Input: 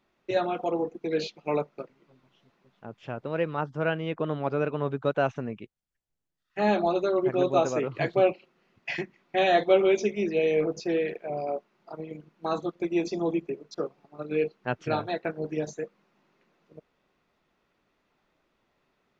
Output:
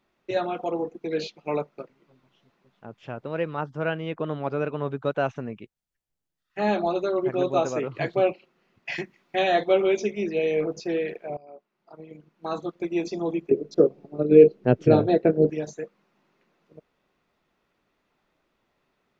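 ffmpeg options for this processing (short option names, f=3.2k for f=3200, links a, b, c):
-filter_complex "[0:a]asettb=1/sr,asplit=3[a][b][c];[a]atrim=end=8.924[d];[b]atrim=start=8.92:end=9.42,asetpts=PTS-STARTPTS,afade=t=in:d=0.004:c=qsin,afade=t=out:st=0.496:d=0.004:c=qsin,highshelf=f=4k:g=6.5[e];[c]atrim=start=9.416[f];[d][e]acrossfade=d=0.004:c1=hsin:c2=qsin[g];[g][f]acrossfade=d=0.004:c1=qsin:c2=hsin,asettb=1/sr,asplit=3[h][i][j];[h]atrim=end=13.514[k];[i]atrim=start=13.51:end=15.5,asetpts=PTS-STARTPTS,afade=t=in:d=0.004:c=qsin,afade=t=out:st=1.986:d=0.004:c=qsin,lowshelf=f=680:t=q:w=1.5:g=12[l];[j]atrim=start=15.496[m];[k][l]acrossfade=d=0.004:c1=hsin:c2=qsin[n];[n][m]acrossfade=d=0.004:c1=qsin:c2=hsin,asplit=2[o][p];[o]atrim=end=11.37,asetpts=PTS-STARTPTS,afade=t=out:st=11.366:d=0.004:c=hsin:silence=0.0749894[q];[p]atrim=start=11.37,asetpts=PTS-STARTPTS,afade=t=in:d=1.36:silence=0.0749894[r];[q][r]concat=n=2:v=0:a=1"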